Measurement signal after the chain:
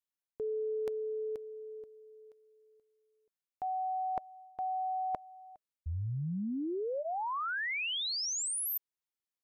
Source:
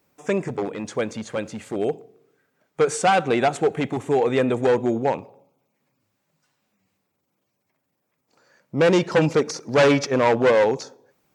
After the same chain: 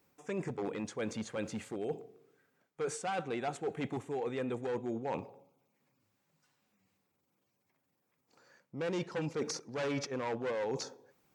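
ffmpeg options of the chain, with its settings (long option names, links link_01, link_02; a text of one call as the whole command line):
ffmpeg -i in.wav -af "bandreject=frequency=620:width=12,areverse,acompressor=threshold=-29dB:ratio=8,areverse,volume=-4.5dB" out.wav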